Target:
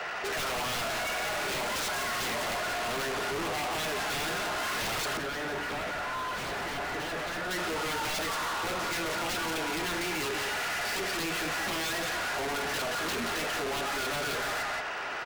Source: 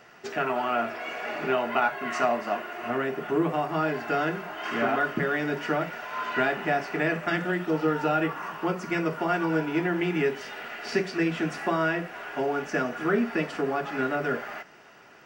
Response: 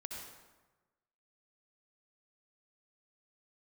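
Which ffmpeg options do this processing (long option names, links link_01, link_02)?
-filter_complex "[0:a]highpass=frequency=110:width=0.5412,highpass=frequency=110:width=1.3066,acrossover=split=470 4300:gain=0.158 1 0.178[link_01][link_02][link_03];[link_01][link_02][link_03]amix=inputs=3:normalize=0,aeval=exprs='0.211*sin(PI/2*6.31*val(0)/0.211)':channel_layout=same,aecho=1:1:176:0.422,asoftclip=type=tanh:threshold=-33dB,asettb=1/sr,asplit=3[link_04][link_05][link_06];[link_04]atrim=end=5.174[link_07];[link_05]atrim=start=5.17:end=7.51,asetpts=PTS-STARTPTS,afade=type=in:duration=0.004:curve=qsin,afade=type=out:start_time=2.336:duration=0.004:curve=qsin,highshelf=frequency=3400:gain=-11.5[link_08];[link_06]atrim=start=7.506[link_09];[link_07][link_08]acrossfade=duration=0.004:curve1=hsin:curve2=qsin[link_10];[link_10][link_09]acrossfade=duration=0.004:curve1=qsin:curve2=hsin,volume=1.5dB"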